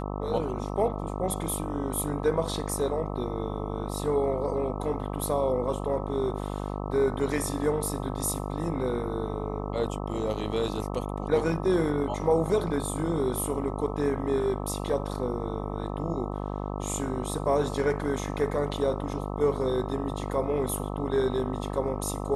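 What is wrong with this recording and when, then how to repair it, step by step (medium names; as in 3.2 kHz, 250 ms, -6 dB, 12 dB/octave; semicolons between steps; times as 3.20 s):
buzz 50 Hz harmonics 26 -33 dBFS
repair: de-hum 50 Hz, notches 26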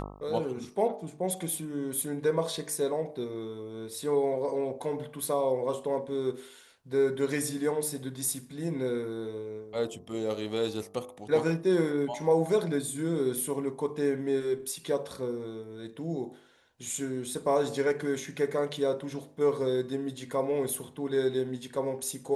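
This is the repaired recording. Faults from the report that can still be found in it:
nothing left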